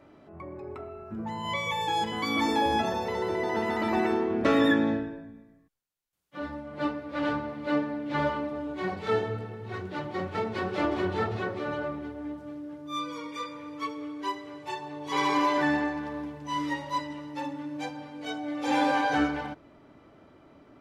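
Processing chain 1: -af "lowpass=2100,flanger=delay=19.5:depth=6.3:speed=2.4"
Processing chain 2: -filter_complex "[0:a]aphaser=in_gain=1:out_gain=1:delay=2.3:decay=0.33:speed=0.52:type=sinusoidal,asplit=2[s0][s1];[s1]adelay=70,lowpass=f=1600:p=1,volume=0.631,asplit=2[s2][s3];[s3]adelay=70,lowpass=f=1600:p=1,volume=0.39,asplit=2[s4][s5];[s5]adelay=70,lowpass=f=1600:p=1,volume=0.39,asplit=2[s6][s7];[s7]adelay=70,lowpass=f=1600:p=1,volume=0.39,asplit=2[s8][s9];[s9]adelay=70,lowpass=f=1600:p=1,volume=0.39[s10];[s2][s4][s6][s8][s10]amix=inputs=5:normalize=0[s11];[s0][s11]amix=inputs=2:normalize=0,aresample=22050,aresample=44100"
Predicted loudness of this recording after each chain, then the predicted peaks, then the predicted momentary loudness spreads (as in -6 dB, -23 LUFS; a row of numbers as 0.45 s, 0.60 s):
-33.5 LUFS, -28.0 LUFS; -14.5 dBFS, -9.5 dBFS; 14 LU, 15 LU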